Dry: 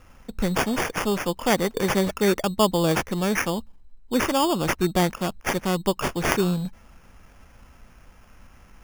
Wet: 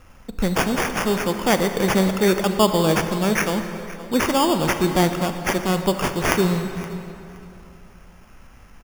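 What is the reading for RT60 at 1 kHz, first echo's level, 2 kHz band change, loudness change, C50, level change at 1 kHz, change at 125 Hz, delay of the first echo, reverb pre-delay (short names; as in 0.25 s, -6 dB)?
2.7 s, -18.0 dB, +3.0 dB, +3.0 dB, 7.5 dB, +3.5 dB, +3.5 dB, 0.52 s, 31 ms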